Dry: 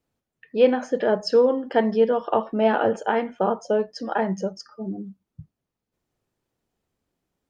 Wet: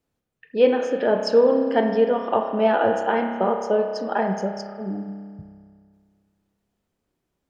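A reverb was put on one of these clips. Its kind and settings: spring tank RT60 2 s, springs 30 ms, chirp 25 ms, DRR 4.5 dB

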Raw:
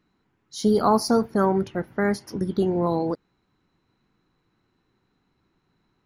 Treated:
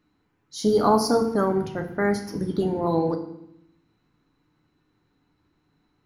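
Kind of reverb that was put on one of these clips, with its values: FDN reverb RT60 0.74 s, low-frequency decay 1.55×, high-frequency decay 0.85×, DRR 4.5 dB; gain -1 dB

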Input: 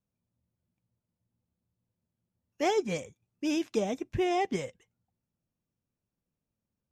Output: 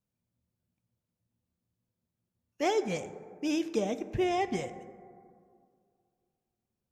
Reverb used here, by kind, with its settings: plate-style reverb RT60 2.3 s, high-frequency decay 0.3×, DRR 11.5 dB; gain -1 dB

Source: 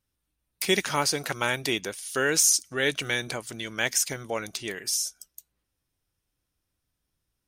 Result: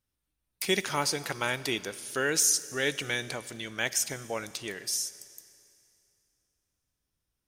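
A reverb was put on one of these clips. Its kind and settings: Schroeder reverb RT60 2.6 s, combs from 28 ms, DRR 16 dB; gain -3.5 dB

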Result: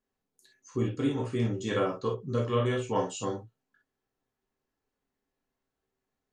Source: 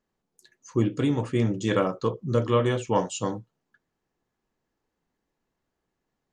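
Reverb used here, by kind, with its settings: non-linear reverb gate 80 ms flat, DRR -0.5 dB; gain -7.5 dB

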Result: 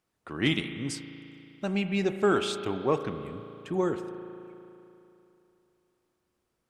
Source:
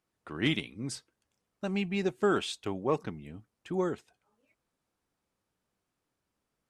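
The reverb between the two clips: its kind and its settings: spring tank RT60 3 s, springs 36 ms, chirp 80 ms, DRR 8.5 dB; gain +2.5 dB

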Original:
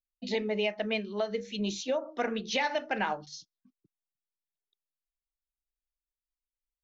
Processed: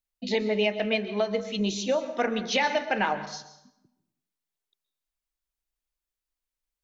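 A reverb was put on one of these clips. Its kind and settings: plate-style reverb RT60 0.83 s, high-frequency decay 0.75×, pre-delay 0.11 s, DRR 11.5 dB; gain +4.5 dB

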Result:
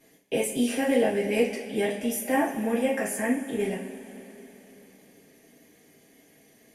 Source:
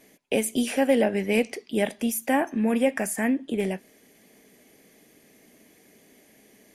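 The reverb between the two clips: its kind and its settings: two-slope reverb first 0.32 s, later 3.8 s, from -19 dB, DRR -6 dB; gain -8.5 dB

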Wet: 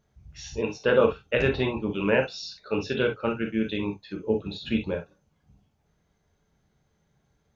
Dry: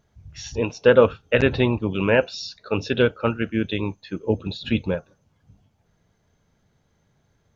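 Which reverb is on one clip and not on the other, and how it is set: non-linear reverb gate 80 ms flat, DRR 2.5 dB; gain -6 dB

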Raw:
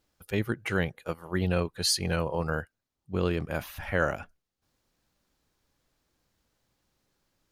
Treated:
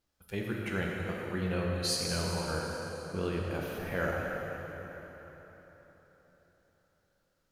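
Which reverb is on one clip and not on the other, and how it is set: plate-style reverb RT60 4.2 s, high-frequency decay 0.8×, DRR -2.5 dB; gain -8 dB

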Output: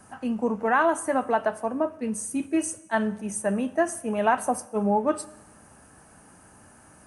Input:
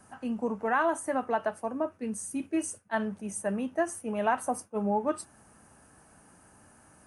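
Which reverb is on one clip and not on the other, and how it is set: Schroeder reverb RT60 1 s, combs from 29 ms, DRR 17.5 dB; gain +5 dB

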